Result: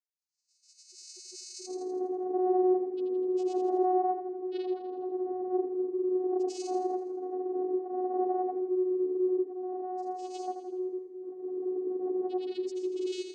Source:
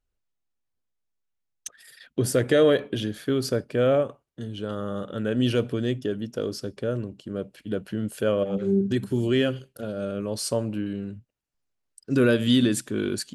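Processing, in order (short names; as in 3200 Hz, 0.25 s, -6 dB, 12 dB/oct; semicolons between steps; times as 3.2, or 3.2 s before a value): spectral swells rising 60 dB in 2.50 s; expander -44 dBFS; high shelf 3100 Hz +11 dB; compressor 6:1, threshold -20 dBFS, peak gain reduction 9 dB; grains 0.1 s, grains 20/s, pitch spread up and down by 0 st; loudest bins only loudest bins 4; vocoder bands 8, saw 368 Hz; split-band echo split 380 Hz, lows 0.35 s, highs 82 ms, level -8 dB; mismatched tape noise reduction encoder only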